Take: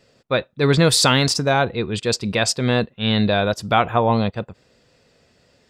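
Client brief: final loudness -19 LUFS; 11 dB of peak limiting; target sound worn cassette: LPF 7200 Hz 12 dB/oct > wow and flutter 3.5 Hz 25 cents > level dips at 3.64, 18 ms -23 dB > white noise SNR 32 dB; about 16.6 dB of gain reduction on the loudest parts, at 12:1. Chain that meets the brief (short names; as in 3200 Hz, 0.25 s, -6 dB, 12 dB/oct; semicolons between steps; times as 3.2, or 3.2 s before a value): compressor 12:1, threshold -28 dBFS; limiter -27.5 dBFS; LPF 7200 Hz 12 dB/oct; wow and flutter 3.5 Hz 25 cents; level dips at 3.64, 18 ms -23 dB; white noise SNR 32 dB; gain +18.5 dB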